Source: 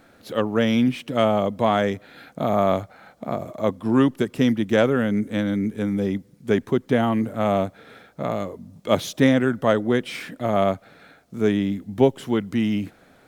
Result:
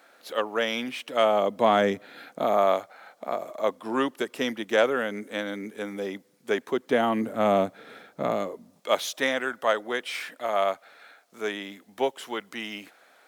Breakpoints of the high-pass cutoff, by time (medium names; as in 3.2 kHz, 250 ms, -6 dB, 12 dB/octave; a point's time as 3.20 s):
1.10 s 580 Hz
1.88 s 190 Hz
2.76 s 500 Hz
6.64 s 500 Hz
7.45 s 210 Hz
8.29 s 210 Hz
8.98 s 700 Hz